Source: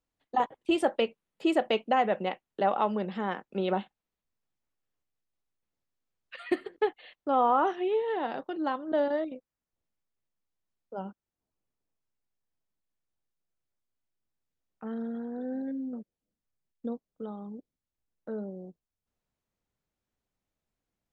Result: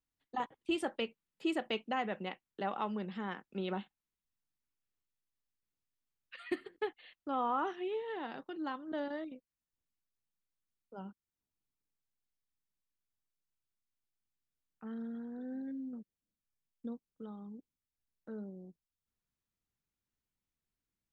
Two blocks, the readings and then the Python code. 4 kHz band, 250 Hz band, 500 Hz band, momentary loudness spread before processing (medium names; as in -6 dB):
-5.5 dB, -7.0 dB, -11.0 dB, 17 LU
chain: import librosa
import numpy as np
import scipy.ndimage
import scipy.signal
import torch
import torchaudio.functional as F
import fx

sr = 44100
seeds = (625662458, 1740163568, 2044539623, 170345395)

y = fx.peak_eq(x, sr, hz=610.0, db=-8.5, octaves=1.2)
y = y * 10.0 ** (-5.0 / 20.0)